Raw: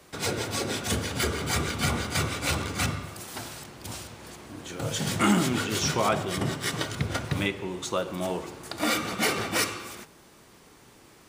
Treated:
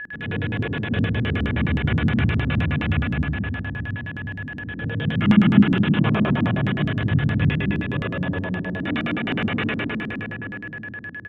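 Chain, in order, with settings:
convolution reverb RT60 3.7 s, pre-delay 32 ms, DRR −7 dB
downsampling to 8,000 Hz
parametric band 160 Hz +2 dB 2.6 octaves
steady tone 1,700 Hz −25 dBFS
low-shelf EQ 220 Hz +9.5 dB
auto-filter low-pass square 9.6 Hz 240–2,800 Hz
level −8.5 dB

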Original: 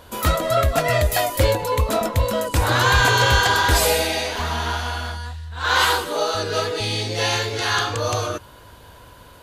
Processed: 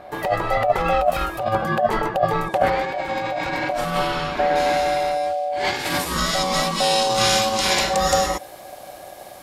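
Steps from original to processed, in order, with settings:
notch filter 670 Hz, Q 18
compressor whose output falls as the input rises −20 dBFS, ratio −0.5
bass and treble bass +10 dB, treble −13 dB, from 0:04.55 treble +3 dB, from 0:05.99 treble +10 dB
ring modulation 660 Hz

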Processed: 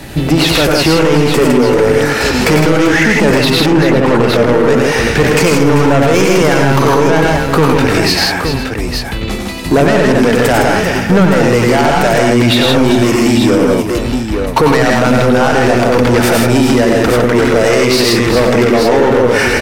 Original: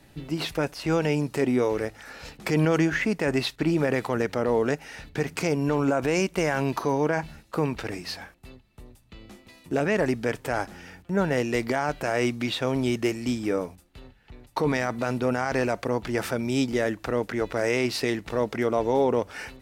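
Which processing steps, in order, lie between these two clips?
0:03.50–0:04.36: low-pass filter 1,600 Hz 6 dB per octave
in parallel at +2.5 dB: downward compressor, threshold −33 dBFS, peak gain reduction 14.5 dB
on the sum: soft clipping −22.5 dBFS, distortion −8 dB
multi-tap delay 93/109/159/389/501/867 ms −6/−5/−3.5/−11.5/−19.5/−8 dB
boost into a limiter +19 dB
level −1 dB

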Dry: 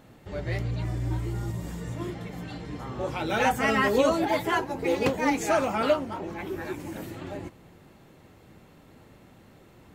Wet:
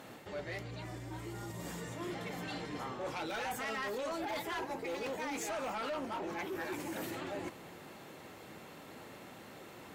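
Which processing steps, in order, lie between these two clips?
brickwall limiter −19 dBFS, peak gain reduction 8.5 dB
reversed playback
downward compressor 6 to 1, threshold −38 dBFS, peak gain reduction 13.5 dB
reversed playback
high-pass filter 460 Hz 6 dB per octave
harmonic generator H 5 −6 dB, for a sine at −28.5 dBFS
level −4 dB

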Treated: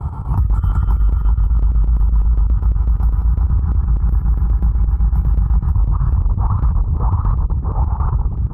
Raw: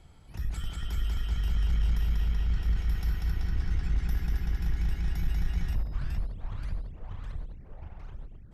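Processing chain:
low-shelf EQ 310 Hz +6.5 dB
noise gate with hold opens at −43 dBFS
high-pass filter 51 Hz 24 dB per octave
comb filter 2.3 ms, depth 32%
downward compressor 16 to 1, threshold −36 dBFS, peak gain reduction 20.5 dB
drawn EQ curve 150 Hz 0 dB, 270 Hz −6 dB, 560 Hz −10 dB, 1,100 Hz +10 dB, 1,900 Hz −23 dB, 3,500 Hz −28 dB, 6,600 Hz −28 dB, 13,000 Hz −15 dB
square-wave tremolo 8 Hz, depth 65%, duty 75%
boost into a limiter +35 dB
level −7 dB

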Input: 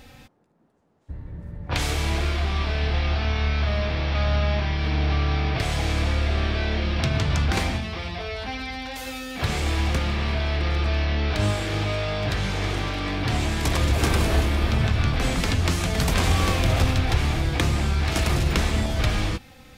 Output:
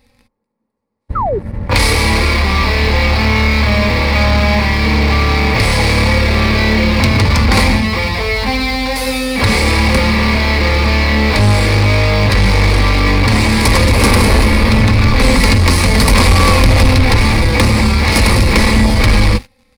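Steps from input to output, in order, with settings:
noise gate −36 dBFS, range −7 dB
EQ curve with evenly spaced ripples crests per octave 0.91, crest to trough 10 dB
leveller curve on the samples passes 3
comb filter 3.6 ms, depth 31%
sound drawn into the spectrogram fall, 0:01.15–0:01.39, 360–1,400 Hz −19 dBFS
level +3 dB

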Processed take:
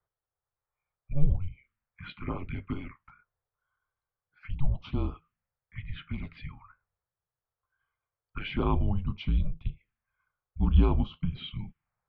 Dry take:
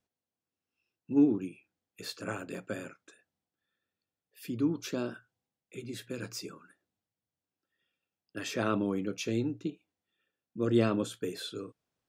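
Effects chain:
phaser swept by the level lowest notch 510 Hz, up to 2,200 Hz, full sweep at −32 dBFS
single-sideband voice off tune −280 Hz 160–3,300 Hz
level +6 dB

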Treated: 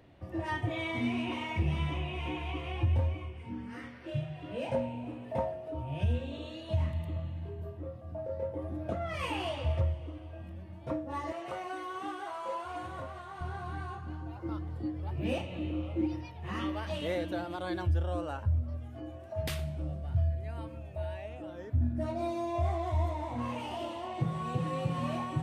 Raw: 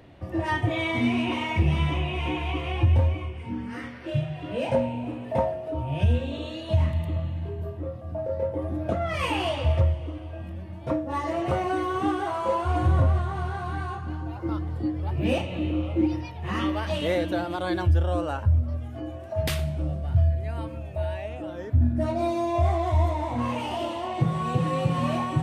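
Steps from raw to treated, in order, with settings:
0:11.32–0:13.41: high-pass filter 770 Hz 6 dB per octave
level −8 dB

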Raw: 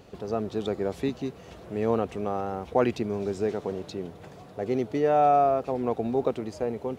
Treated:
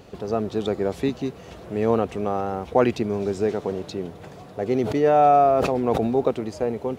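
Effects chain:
0:04.82–0:06.15: level that may fall only so fast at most 26 dB per second
level +4.5 dB

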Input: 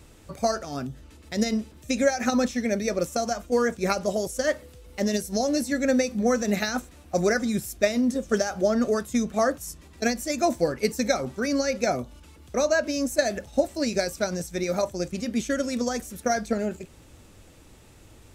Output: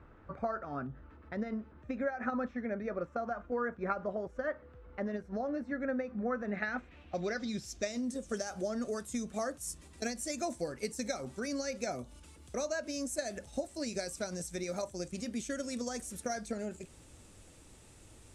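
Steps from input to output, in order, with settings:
downward compressor 2 to 1, threshold −32 dBFS, peak gain reduction 9.5 dB
low-pass filter sweep 1,400 Hz → 9,300 Hz, 0:06.42–0:08.13
level −6 dB

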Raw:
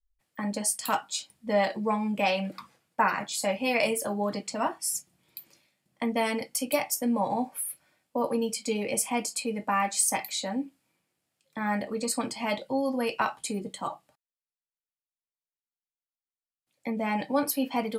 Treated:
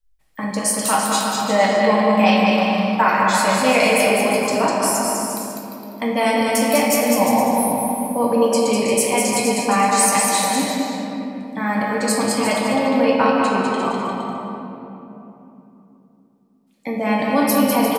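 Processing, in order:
0:12.65–0:13.82: Bessel low-pass filter 4,000 Hz, order 2
bouncing-ball delay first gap 200 ms, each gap 0.75×, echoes 5
rectangular room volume 140 cubic metres, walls hard, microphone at 0.52 metres
level +6 dB

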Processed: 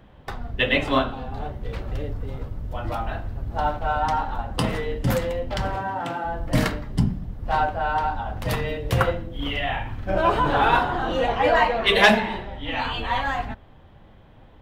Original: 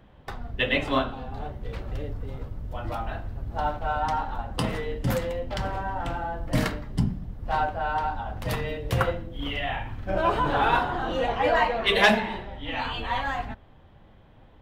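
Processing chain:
0:05.75–0:06.24: high-pass filter 78 Hz → 190 Hz 24 dB per octave
level +3.5 dB

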